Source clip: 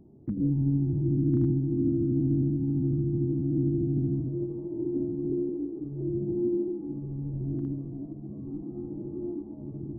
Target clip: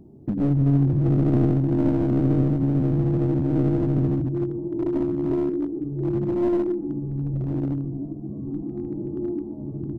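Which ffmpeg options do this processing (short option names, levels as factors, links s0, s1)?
-filter_complex "[0:a]aeval=exprs='clip(val(0),-1,0.0422)':c=same,asplit=2[s0][s1];[s1]adelay=122,lowpass=f=830:p=1,volume=0.141,asplit=2[s2][s3];[s3]adelay=122,lowpass=f=830:p=1,volume=0.54,asplit=2[s4][s5];[s5]adelay=122,lowpass=f=830:p=1,volume=0.54,asplit=2[s6][s7];[s7]adelay=122,lowpass=f=830:p=1,volume=0.54,asplit=2[s8][s9];[s9]adelay=122,lowpass=f=830:p=1,volume=0.54[s10];[s0][s2][s4][s6][s8][s10]amix=inputs=6:normalize=0,volume=2.11"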